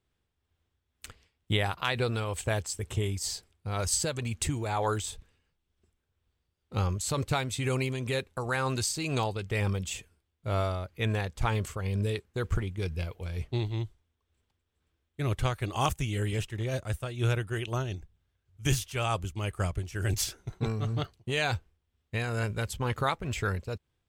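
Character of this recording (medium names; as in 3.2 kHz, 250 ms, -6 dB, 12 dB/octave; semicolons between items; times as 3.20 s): tremolo triangle 2.1 Hz, depth 50%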